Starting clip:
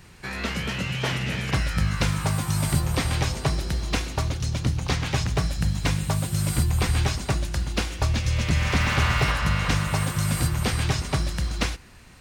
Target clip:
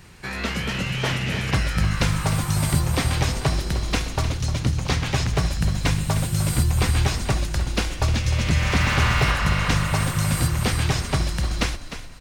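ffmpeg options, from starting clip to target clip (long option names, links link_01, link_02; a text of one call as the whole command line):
ffmpeg -i in.wav -filter_complex "[0:a]asplit=5[link_01][link_02][link_03][link_04][link_05];[link_02]adelay=304,afreqshift=-33,volume=-11dB[link_06];[link_03]adelay=608,afreqshift=-66,volume=-18.7dB[link_07];[link_04]adelay=912,afreqshift=-99,volume=-26.5dB[link_08];[link_05]adelay=1216,afreqshift=-132,volume=-34.2dB[link_09];[link_01][link_06][link_07][link_08][link_09]amix=inputs=5:normalize=0,volume=2dB" out.wav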